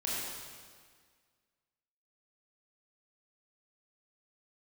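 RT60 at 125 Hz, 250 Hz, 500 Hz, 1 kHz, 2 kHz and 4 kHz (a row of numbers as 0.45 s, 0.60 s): 1.8 s, 1.9 s, 1.8 s, 1.8 s, 1.7 s, 1.6 s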